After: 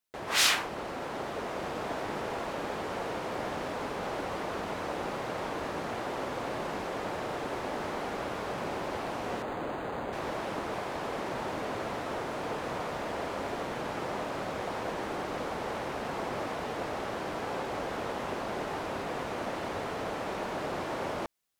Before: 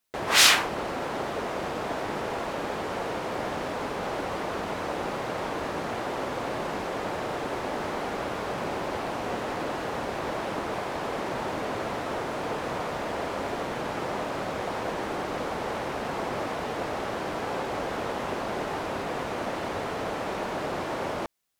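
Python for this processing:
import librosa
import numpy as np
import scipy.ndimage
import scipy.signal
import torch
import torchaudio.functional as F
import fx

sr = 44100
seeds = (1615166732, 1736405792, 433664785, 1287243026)

y = fx.rider(x, sr, range_db=3, speed_s=2.0)
y = fx.resample_linear(y, sr, factor=8, at=(9.42, 10.13))
y = F.gain(torch.from_numpy(y), -5.5).numpy()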